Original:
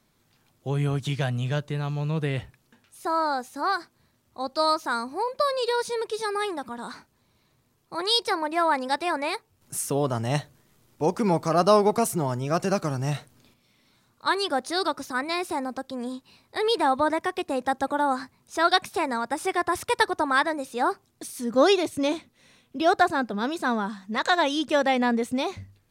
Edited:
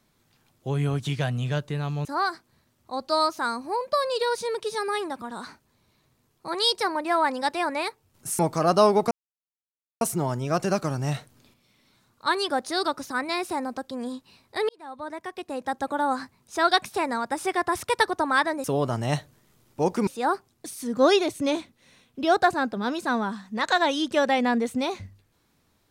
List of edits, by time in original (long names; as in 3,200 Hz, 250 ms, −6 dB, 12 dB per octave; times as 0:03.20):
0:02.05–0:03.52: remove
0:09.86–0:11.29: move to 0:20.64
0:12.01: splice in silence 0.90 s
0:16.69–0:18.20: fade in